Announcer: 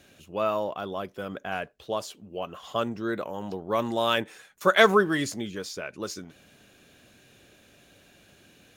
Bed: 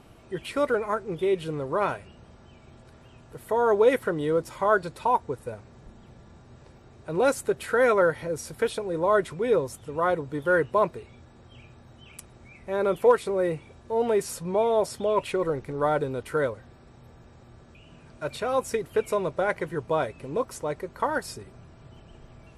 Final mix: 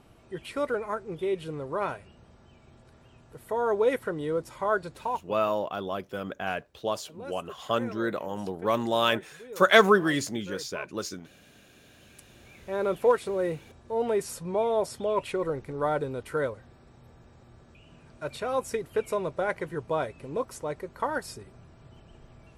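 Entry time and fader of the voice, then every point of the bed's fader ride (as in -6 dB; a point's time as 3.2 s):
4.95 s, +0.5 dB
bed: 4.99 s -4.5 dB
5.6 s -20 dB
11.5 s -20 dB
12.6 s -3 dB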